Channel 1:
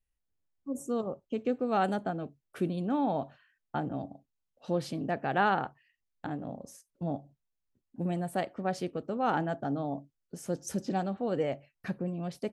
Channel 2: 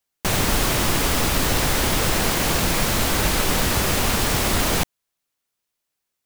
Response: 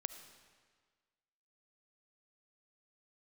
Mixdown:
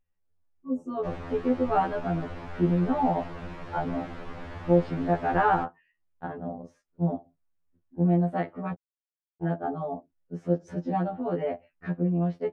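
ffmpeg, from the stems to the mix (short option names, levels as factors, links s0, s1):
-filter_complex "[0:a]acontrast=64,volume=1.06,asplit=3[s0][s1][s2];[s0]atrim=end=8.73,asetpts=PTS-STARTPTS,afade=t=out:st=8.726:d=0.004:c=hsin[s3];[s1]atrim=start=8.73:end=9.43,asetpts=PTS-STARTPTS,volume=0[s4];[s2]atrim=start=9.43,asetpts=PTS-STARTPTS,afade=t=in:d=0.004:c=hsin[s5];[s3][s4][s5]concat=n=3:v=0:a=1[s6];[1:a]adelay=800,volume=0.188[s7];[s6][s7]amix=inputs=2:normalize=0,lowpass=1700,afftfilt=real='re*2*eq(mod(b,4),0)':imag='im*2*eq(mod(b,4),0)':win_size=2048:overlap=0.75"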